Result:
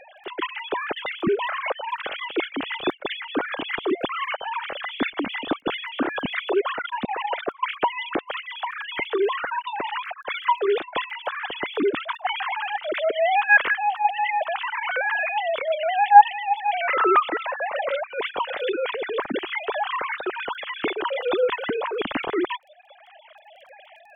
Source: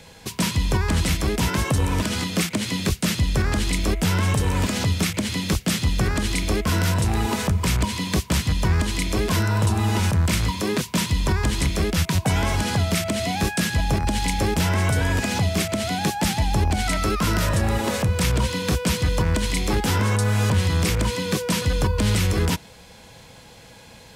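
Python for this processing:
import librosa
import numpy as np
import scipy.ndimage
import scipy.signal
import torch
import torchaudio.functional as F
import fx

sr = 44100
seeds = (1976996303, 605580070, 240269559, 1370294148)

y = fx.sine_speech(x, sr)
y = fx.dmg_crackle(y, sr, seeds[0], per_s=10.0, level_db=-43.0)
y = fx.dereverb_blind(y, sr, rt60_s=1.1)
y = F.gain(torch.from_numpy(y), -2.5).numpy()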